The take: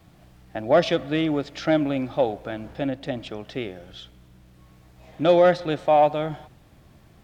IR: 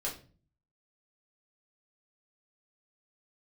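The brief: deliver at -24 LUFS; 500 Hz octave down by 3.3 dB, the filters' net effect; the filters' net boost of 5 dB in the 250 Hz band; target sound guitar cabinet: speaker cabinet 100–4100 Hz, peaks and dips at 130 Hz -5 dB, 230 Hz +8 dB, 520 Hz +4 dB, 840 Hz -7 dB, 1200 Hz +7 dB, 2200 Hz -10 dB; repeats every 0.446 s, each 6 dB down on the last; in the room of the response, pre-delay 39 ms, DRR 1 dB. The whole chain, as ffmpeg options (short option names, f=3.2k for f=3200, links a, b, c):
-filter_complex "[0:a]equalizer=f=250:t=o:g=7,equalizer=f=500:t=o:g=-8,aecho=1:1:446|892|1338|1784|2230|2676:0.501|0.251|0.125|0.0626|0.0313|0.0157,asplit=2[a][b];[1:a]atrim=start_sample=2205,adelay=39[c];[b][c]afir=irnorm=-1:irlink=0,volume=-4dB[d];[a][d]amix=inputs=2:normalize=0,highpass=100,equalizer=f=130:t=q:w=4:g=-5,equalizer=f=230:t=q:w=4:g=8,equalizer=f=520:t=q:w=4:g=4,equalizer=f=840:t=q:w=4:g=-7,equalizer=f=1.2k:t=q:w=4:g=7,equalizer=f=2.2k:t=q:w=4:g=-10,lowpass=f=4.1k:w=0.5412,lowpass=f=4.1k:w=1.3066,volume=-4dB"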